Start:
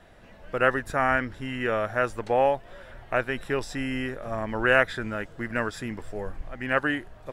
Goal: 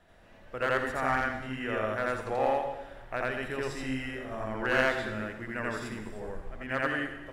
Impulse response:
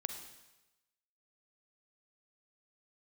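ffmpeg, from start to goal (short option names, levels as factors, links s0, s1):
-filter_complex "[0:a]bandreject=f=46.83:t=h:w=4,bandreject=f=93.66:t=h:w=4,bandreject=f=140.49:t=h:w=4,bandreject=f=187.32:t=h:w=4,bandreject=f=234.15:t=h:w=4,bandreject=f=280.98:t=h:w=4,bandreject=f=327.81:t=h:w=4,bandreject=f=374.64:t=h:w=4,bandreject=f=421.47:t=h:w=4,bandreject=f=468.3:t=h:w=4,bandreject=f=515.13:t=h:w=4,bandreject=f=561.96:t=h:w=4,bandreject=f=608.79:t=h:w=4,aeval=exprs='clip(val(0),-1,0.141)':c=same,asplit=2[s0][s1];[1:a]atrim=start_sample=2205,adelay=84[s2];[s1][s2]afir=irnorm=-1:irlink=0,volume=1.41[s3];[s0][s3]amix=inputs=2:normalize=0,volume=0.376"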